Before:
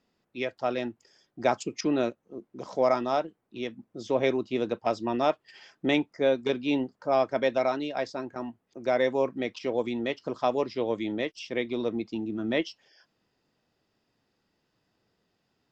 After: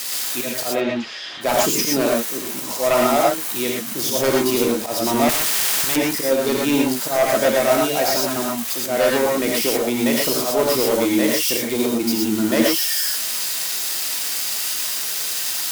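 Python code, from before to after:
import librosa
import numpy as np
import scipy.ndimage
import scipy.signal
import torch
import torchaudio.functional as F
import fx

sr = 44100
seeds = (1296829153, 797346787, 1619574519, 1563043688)

y = x + 0.5 * 10.0 ** (-24.5 / 20.0) * np.diff(np.sign(x), prepend=np.sign(x[:1]))
y = fx.cheby1_lowpass(y, sr, hz=3500.0, order=3, at=(0.68, 1.41))
y = fx.auto_swell(y, sr, attack_ms=130.0)
y = fx.fold_sine(y, sr, drive_db=6, ceiling_db=-13.0)
y = fx.rev_gated(y, sr, seeds[0], gate_ms=140, shape='rising', drr_db=-2.0)
y = fx.spectral_comp(y, sr, ratio=4.0, at=(5.29, 5.96))
y = F.gain(torch.from_numpy(y), -1.0).numpy()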